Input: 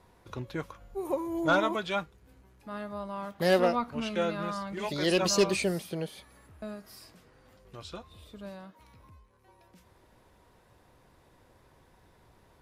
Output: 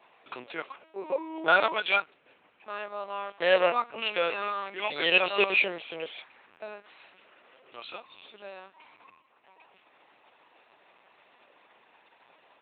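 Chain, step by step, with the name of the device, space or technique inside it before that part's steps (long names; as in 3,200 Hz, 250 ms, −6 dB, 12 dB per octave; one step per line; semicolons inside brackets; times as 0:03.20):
talking toy (linear-prediction vocoder at 8 kHz pitch kept; high-pass filter 540 Hz 12 dB per octave; parametric band 2,600 Hz +9 dB 0.52 octaves)
level +4.5 dB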